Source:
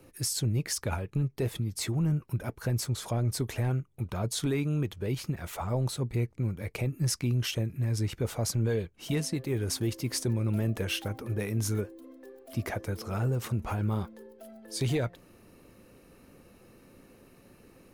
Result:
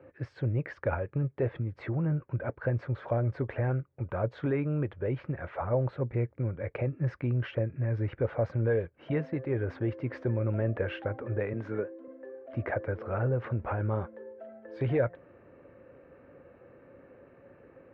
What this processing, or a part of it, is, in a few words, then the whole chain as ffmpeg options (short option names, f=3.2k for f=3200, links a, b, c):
bass cabinet: -filter_complex "[0:a]asettb=1/sr,asplit=3[a][b][c];[a]atrim=end=11.534[d];[b]atrim=start=11.53:end=12.08,asetpts=PTS-STARTPTS,afade=t=in:d=0.004:c=qsin,afade=t=out:st=0.546:d=0.004:c=qsin,highpass=f=140:w=0.5412,highpass=f=140:w=1.3066[e];[c]atrim=start=12.076[f];[d][e]acrossfade=d=0.004:c1=hsin:c2=qsin[g];[g][f]acrossfade=d=0.004:c1=qsin:c2=hsin,highpass=69,equalizer=f=200:t=q:w=4:g=-8,equalizer=f=550:t=q:w=4:g=10,equalizer=f=1.6k:t=q:w=4:g=5,lowpass=f=2.1k:w=0.5412,lowpass=f=2.1k:w=1.3066"